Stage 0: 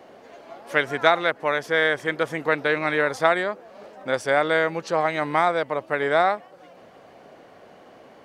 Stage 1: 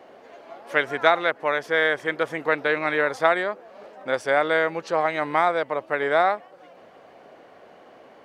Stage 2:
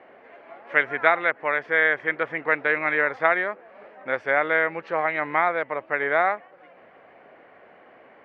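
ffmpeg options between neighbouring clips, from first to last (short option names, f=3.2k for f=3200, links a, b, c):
-af "bass=f=250:g=-6,treble=f=4k:g=-5"
-af "lowpass=f=2.1k:t=q:w=2.3,volume=-3.5dB"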